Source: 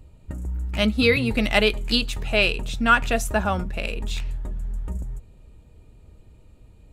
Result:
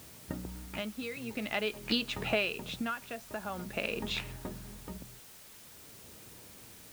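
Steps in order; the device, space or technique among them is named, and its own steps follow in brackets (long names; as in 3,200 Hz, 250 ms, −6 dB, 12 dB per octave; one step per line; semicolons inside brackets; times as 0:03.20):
medium wave at night (band-pass filter 170–3,700 Hz; downward compressor, threshold −29 dBFS, peak gain reduction 16 dB; amplitude tremolo 0.47 Hz, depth 72%; steady tone 9,000 Hz −69 dBFS; white noise bed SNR 15 dB)
level +2.5 dB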